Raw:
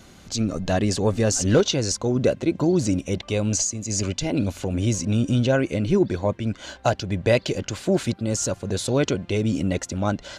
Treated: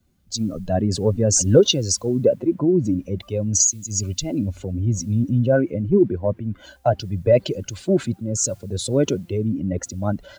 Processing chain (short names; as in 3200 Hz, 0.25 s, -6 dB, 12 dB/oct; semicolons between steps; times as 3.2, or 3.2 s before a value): spectral contrast raised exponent 1.7; requantised 10-bit, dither triangular; three-band expander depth 70%; gain +1.5 dB